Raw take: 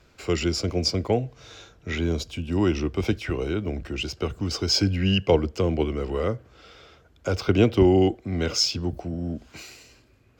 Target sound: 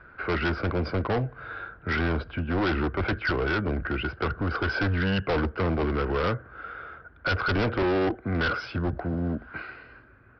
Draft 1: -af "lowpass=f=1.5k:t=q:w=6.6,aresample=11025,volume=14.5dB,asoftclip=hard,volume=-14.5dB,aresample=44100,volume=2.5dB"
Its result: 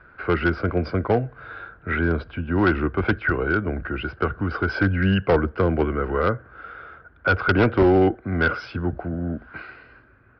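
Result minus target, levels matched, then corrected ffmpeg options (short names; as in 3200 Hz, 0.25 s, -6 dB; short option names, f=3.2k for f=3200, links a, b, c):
overloaded stage: distortion -9 dB
-af "lowpass=f=1.5k:t=q:w=6.6,aresample=11025,volume=25dB,asoftclip=hard,volume=-25dB,aresample=44100,volume=2.5dB"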